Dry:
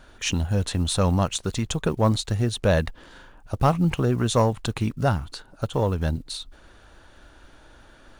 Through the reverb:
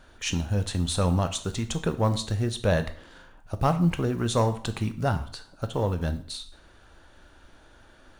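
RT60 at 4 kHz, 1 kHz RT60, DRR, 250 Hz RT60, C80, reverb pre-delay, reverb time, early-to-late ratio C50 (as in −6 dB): 0.50 s, 0.50 s, 9.0 dB, 0.50 s, 17.0 dB, 11 ms, 0.50 s, 14.0 dB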